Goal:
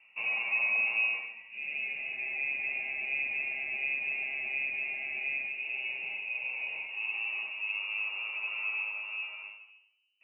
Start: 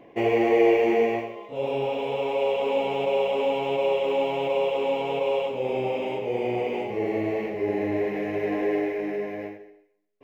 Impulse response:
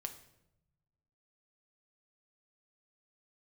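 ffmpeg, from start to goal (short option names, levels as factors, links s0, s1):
-filter_complex "[0:a]aemphasis=mode=reproduction:type=75kf[s0];[1:a]atrim=start_sample=2205,asetrate=52920,aresample=44100[s1];[s0][s1]afir=irnorm=-1:irlink=0,lowpass=f=2600:t=q:w=0.5098,lowpass=f=2600:t=q:w=0.6013,lowpass=f=2600:t=q:w=0.9,lowpass=f=2600:t=q:w=2.563,afreqshift=-3000,volume=0.531"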